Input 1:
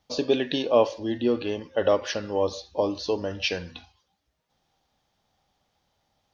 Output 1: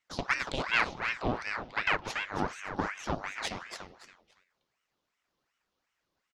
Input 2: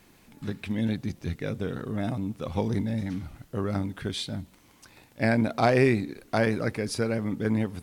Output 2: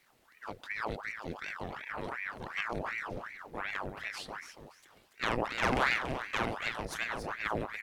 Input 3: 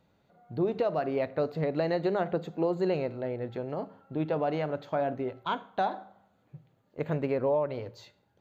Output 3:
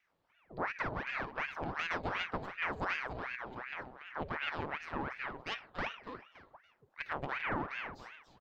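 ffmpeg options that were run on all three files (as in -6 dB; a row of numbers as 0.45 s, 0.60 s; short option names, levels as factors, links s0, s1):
-af "aeval=exprs='0.422*(cos(1*acos(clip(val(0)/0.422,-1,1)))-cos(1*PI/2))+0.119*(cos(6*acos(clip(val(0)/0.422,-1,1)))-cos(6*PI/2))+0.0299*(cos(8*acos(clip(val(0)/0.422,-1,1)))-cos(8*PI/2))':c=same,aecho=1:1:284|568|852:0.398|0.104|0.0269,aeval=exprs='val(0)*sin(2*PI*1200*n/s+1200*0.8/2.7*sin(2*PI*2.7*n/s))':c=same,volume=0.422"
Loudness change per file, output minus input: -6.0 LU, -7.0 LU, -7.5 LU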